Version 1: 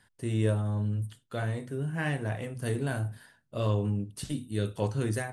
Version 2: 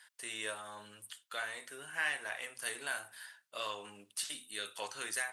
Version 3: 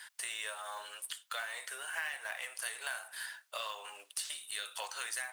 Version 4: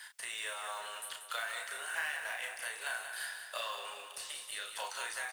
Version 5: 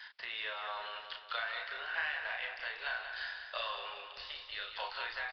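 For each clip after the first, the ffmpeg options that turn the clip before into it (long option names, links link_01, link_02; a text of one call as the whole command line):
ffmpeg -i in.wav -filter_complex "[0:a]highpass=1400,asplit=2[link_01][link_02];[link_02]acompressor=threshold=-51dB:ratio=6,volume=-3dB[link_03];[link_01][link_03]amix=inputs=2:normalize=0,volume=2.5dB" out.wav
ffmpeg -i in.wav -af "acompressor=threshold=-48dB:ratio=4,highpass=frequency=590:width=0.5412,highpass=frequency=590:width=1.3066,acrusher=bits=4:mode=log:mix=0:aa=0.000001,volume=10dB" out.wav
ffmpeg -i in.wav -filter_complex "[0:a]acrossover=split=200|1200|2400[link_01][link_02][link_03][link_04];[link_04]alimiter=level_in=8.5dB:limit=-24dB:level=0:latency=1:release=228,volume=-8.5dB[link_05];[link_01][link_02][link_03][link_05]amix=inputs=4:normalize=0,asplit=2[link_06][link_07];[link_07]adelay=34,volume=-5dB[link_08];[link_06][link_08]amix=inputs=2:normalize=0,aecho=1:1:187|374|561|748|935|1122:0.398|0.215|0.116|0.0627|0.0339|0.0183" out.wav
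ffmpeg -i in.wav -af "aresample=11025,aresample=44100,asubboost=boost=7:cutoff=73,volume=1dB" out.wav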